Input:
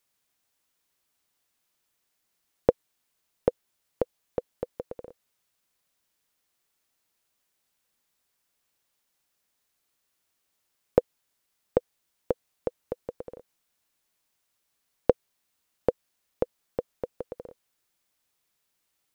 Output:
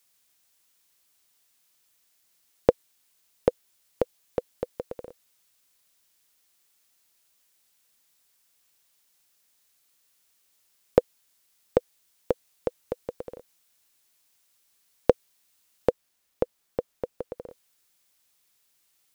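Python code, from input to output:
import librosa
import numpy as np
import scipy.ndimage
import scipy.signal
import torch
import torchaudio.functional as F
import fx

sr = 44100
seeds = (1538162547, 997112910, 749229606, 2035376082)

y = fx.high_shelf(x, sr, hz=2300.0, db=fx.steps((0.0, 8.5), (15.89, 2.5), (17.48, 7.5)))
y = F.gain(torch.from_numpy(y), 1.5).numpy()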